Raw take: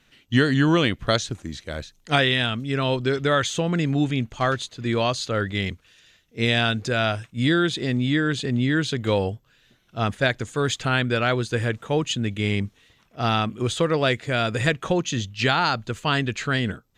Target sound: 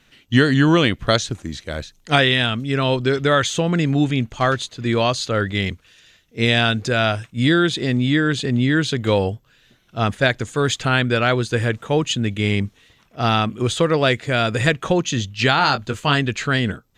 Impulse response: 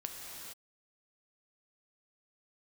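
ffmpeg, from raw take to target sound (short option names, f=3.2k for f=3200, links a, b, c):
-filter_complex "[0:a]asettb=1/sr,asplit=3[a][b][c];[a]atrim=end=15.564[d];[b]atrim=start=15.56:end=16.15,asetpts=PTS-STARTPTS,afade=t=in:d=0.004:c=qsin,afade=t=out:st=0.586:d=0.004:c=qsin,asplit=2[e][f];[f]adelay=21,volume=-8dB[g];[e][g]amix=inputs=2:normalize=0,atrim=end_sample=26019[h];[c]atrim=start=16.146[i];[d][h]acrossfade=d=0.004:c1=hsin:c2=qsin[j];[j][i]acrossfade=d=0.004:c1=qsin:c2=hsin,volume=4dB"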